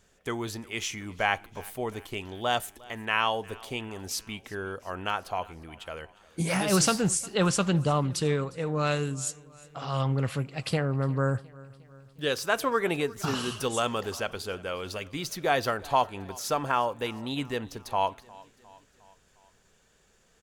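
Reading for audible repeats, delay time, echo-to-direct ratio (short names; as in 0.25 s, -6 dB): 3, 0.356 s, -21.0 dB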